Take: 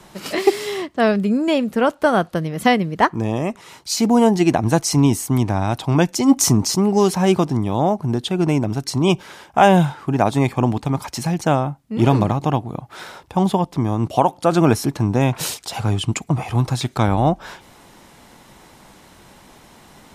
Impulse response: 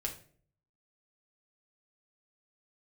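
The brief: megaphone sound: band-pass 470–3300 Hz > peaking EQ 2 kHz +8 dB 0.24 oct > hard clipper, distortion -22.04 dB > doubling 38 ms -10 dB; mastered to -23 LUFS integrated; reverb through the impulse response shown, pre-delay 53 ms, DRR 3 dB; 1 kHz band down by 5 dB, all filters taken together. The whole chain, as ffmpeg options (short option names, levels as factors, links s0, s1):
-filter_complex "[0:a]equalizer=f=1000:t=o:g=-6.5,asplit=2[s0][s1];[1:a]atrim=start_sample=2205,adelay=53[s2];[s1][s2]afir=irnorm=-1:irlink=0,volume=0.631[s3];[s0][s3]amix=inputs=2:normalize=0,highpass=470,lowpass=3300,equalizer=f=2000:t=o:w=0.24:g=8,asoftclip=type=hard:threshold=0.355,asplit=2[s4][s5];[s5]adelay=38,volume=0.316[s6];[s4][s6]amix=inputs=2:normalize=0,volume=1.06"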